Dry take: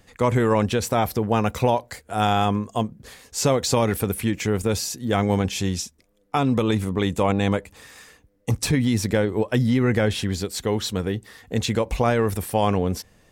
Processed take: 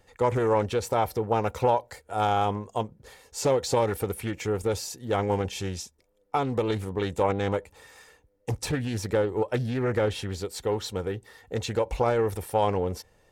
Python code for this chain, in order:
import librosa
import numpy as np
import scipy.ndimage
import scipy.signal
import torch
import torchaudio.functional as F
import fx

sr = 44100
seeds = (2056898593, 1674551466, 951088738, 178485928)

y = fx.peak_eq(x, sr, hz=710.0, db=7.0, octaves=1.2)
y = y + 0.41 * np.pad(y, (int(2.2 * sr / 1000.0), 0))[:len(y)]
y = fx.doppler_dist(y, sr, depth_ms=0.28)
y = y * 10.0 ** (-8.0 / 20.0)